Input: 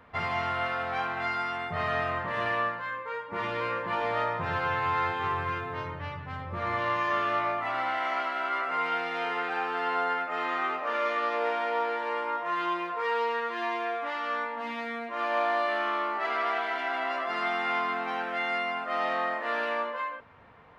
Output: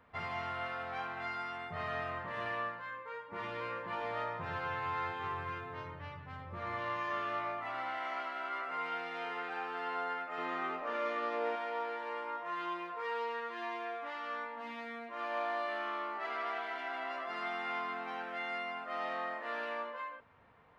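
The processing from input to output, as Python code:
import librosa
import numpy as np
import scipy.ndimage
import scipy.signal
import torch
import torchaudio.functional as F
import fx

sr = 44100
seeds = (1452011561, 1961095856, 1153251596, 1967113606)

y = fx.low_shelf(x, sr, hz=380.0, db=10.0, at=(10.38, 11.56))
y = F.gain(torch.from_numpy(y), -9.0).numpy()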